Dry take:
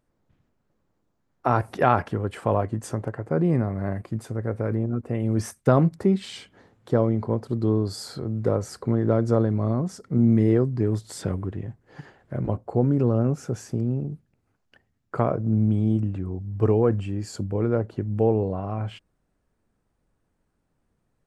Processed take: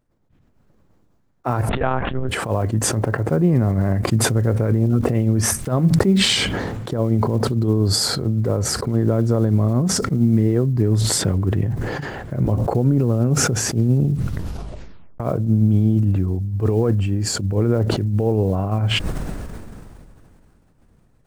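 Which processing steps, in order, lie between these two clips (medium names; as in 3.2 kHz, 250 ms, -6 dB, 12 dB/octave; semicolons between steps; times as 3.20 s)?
block-companded coder 7-bit; bass shelf 210 Hz +6 dB; level rider gain up to 12 dB; 14.09 s: tape stop 1.11 s; peak limiter -7.5 dBFS, peak gain reduction 6.5 dB; tremolo 8.7 Hz, depth 69%; 1.69–2.29 s: monotone LPC vocoder at 8 kHz 130 Hz; decay stretcher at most 22 dB/s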